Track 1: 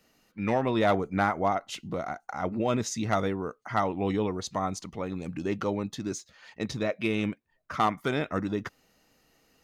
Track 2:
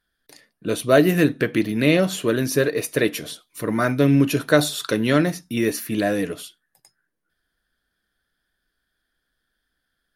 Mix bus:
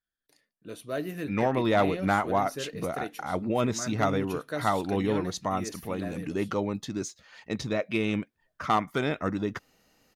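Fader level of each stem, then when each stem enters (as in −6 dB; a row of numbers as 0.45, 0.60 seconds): +0.5, −17.5 decibels; 0.90, 0.00 seconds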